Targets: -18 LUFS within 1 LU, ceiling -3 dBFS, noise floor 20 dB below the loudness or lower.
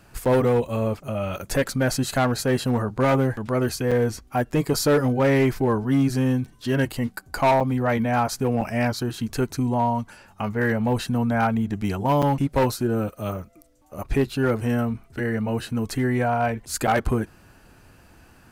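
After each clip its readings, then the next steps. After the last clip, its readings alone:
clipped samples 1.5%; clipping level -14.0 dBFS; dropouts 6; longest dropout 6.4 ms; loudness -23.5 LUFS; peak level -14.0 dBFS; loudness target -18.0 LUFS
-> clip repair -14 dBFS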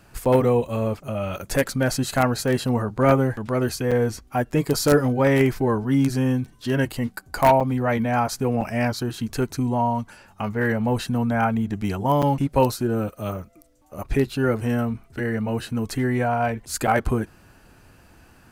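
clipped samples 0.0%; dropouts 6; longest dropout 6.4 ms
-> interpolate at 0.25/3.91/7.60/8.61/12.22/16.87 s, 6.4 ms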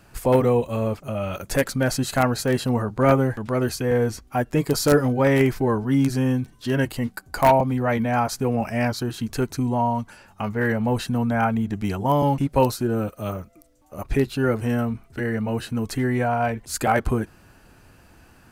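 dropouts 0; loudness -23.0 LUFS; peak level -5.0 dBFS; loudness target -18.0 LUFS
-> trim +5 dB; peak limiter -3 dBFS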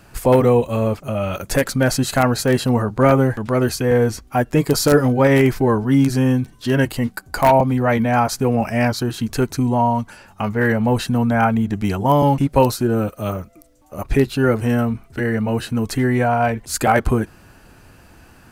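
loudness -18.0 LUFS; peak level -3.0 dBFS; noise floor -48 dBFS

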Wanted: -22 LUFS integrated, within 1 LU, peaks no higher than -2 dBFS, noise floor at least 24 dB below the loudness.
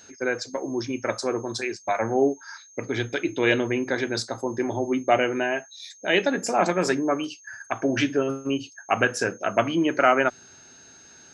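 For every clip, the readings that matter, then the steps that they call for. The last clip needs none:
steady tone 6.4 kHz; tone level -49 dBFS; loudness -25.0 LUFS; peak level -6.0 dBFS; loudness target -22.0 LUFS
-> band-stop 6.4 kHz, Q 30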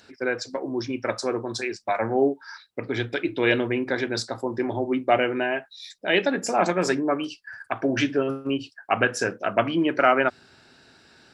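steady tone not found; loudness -25.0 LUFS; peak level -6.0 dBFS; loudness target -22.0 LUFS
-> trim +3 dB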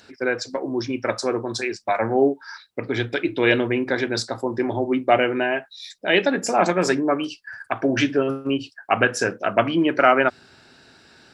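loudness -22.0 LUFS; peak level -3.0 dBFS; noise floor -54 dBFS

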